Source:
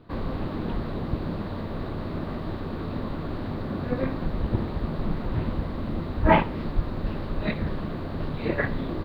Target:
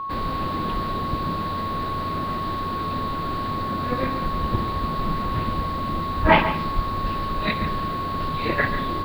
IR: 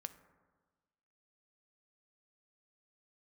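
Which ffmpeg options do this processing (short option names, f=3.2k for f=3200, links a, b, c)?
-filter_complex "[0:a]crystalizer=i=7.5:c=0,aeval=exprs='val(0)+0.0447*sin(2*PI*1100*n/s)':c=same,highshelf=f=4k:g=-5.5,asplit=2[a][b];[1:a]atrim=start_sample=2205,adelay=142[c];[b][c]afir=irnorm=-1:irlink=0,volume=-7dB[d];[a][d]amix=inputs=2:normalize=0"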